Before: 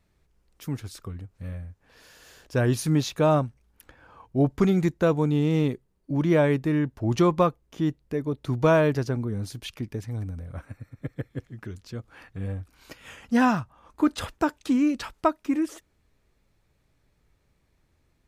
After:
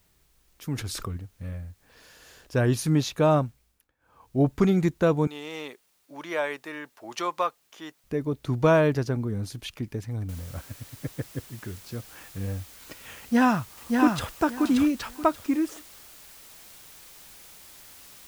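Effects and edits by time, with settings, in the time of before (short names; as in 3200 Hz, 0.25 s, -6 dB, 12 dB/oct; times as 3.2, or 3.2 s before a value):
0.74–1.17 fast leveller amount 70%
3.45–4.42 dip -22.5 dB, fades 0.43 s
5.27–8.04 HPF 790 Hz
10.29 noise floor step -68 dB -49 dB
13.19–14.31 echo throw 0.58 s, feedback 20%, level -3.5 dB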